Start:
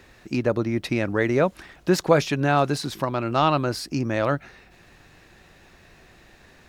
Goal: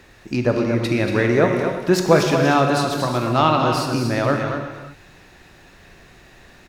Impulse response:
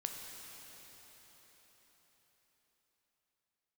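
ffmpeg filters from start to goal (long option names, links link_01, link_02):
-filter_complex "[0:a]aecho=1:1:235:0.398[link_01];[1:a]atrim=start_sample=2205,afade=type=out:start_time=0.39:duration=0.01,atrim=end_sample=17640,asetrate=41454,aresample=44100[link_02];[link_01][link_02]afir=irnorm=-1:irlink=0,volume=4.5dB"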